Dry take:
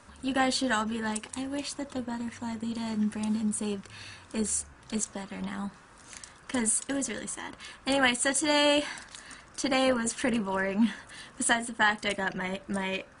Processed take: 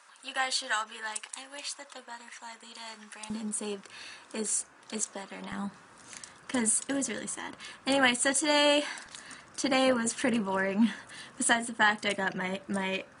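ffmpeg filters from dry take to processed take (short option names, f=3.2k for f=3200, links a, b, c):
-af "asetnsamples=n=441:p=0,asendcmd='3.3 highpass f 310;5.52 highpass f 120;8.34 highpass f 260;9.06 highpass f 110',highpass=950"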